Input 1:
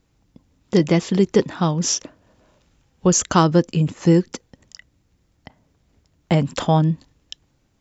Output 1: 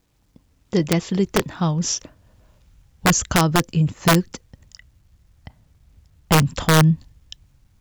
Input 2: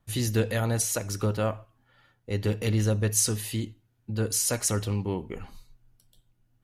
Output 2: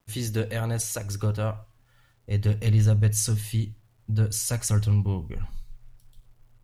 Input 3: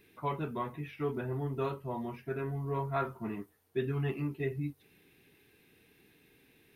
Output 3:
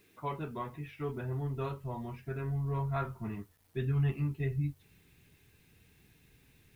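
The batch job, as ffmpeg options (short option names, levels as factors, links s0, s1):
-af "asubboost=boost=6.5:cutoff=130,aeval=exprs='(mod(1.88*val(0)+1,2)-1)/1.88':c=same,acrusher=bits=10:mix=0:aa=0.000001,volume=0.75"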